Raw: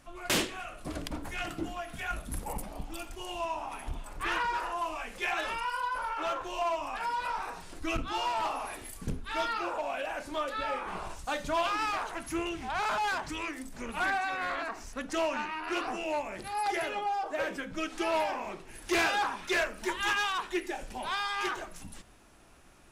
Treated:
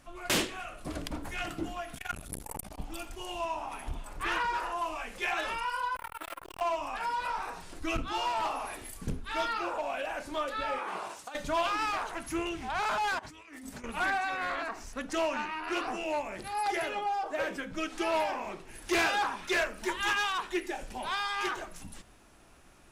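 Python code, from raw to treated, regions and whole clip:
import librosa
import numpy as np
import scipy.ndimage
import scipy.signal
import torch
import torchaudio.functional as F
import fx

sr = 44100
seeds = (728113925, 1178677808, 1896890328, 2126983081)

y = fx.chain(x, sr, fx.high_shelf(hz=3500.0, db=9.5),
    fx.transformer_sat(knee_hz=750.0), at=(1.94, 2.78))
y = fx.chain(y, sr, fx.peak_eq(hz=660.0, db=-5.0, octaves=0.8),
    fx.resample_bad(factor=4, down='none', up='hold'),
    fx.transformer_sat(knee_hz=1200.0), at=(5.96, 6.61))
y = fx.chain(y, sr, fx.highpass(hz=300.0, slope=12),
    fx.over_compress(threshold_db=-36.0, ratio=-0.5), at=(10.78, 11.35))
y = fx.chain(y, sr, fx.highpass(hz=55.0, slope=12),
    fx.over_compress(threshold_db=-47.0, ratio=-1.0),
    fx.notch_comb(f0_hz=170.0), at=(13.19, 13.84))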